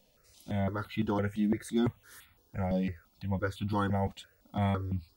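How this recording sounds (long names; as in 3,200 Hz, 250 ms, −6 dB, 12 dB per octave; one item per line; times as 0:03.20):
notches that jump at a steady rate 5.9 Hz 370–1,700 Hz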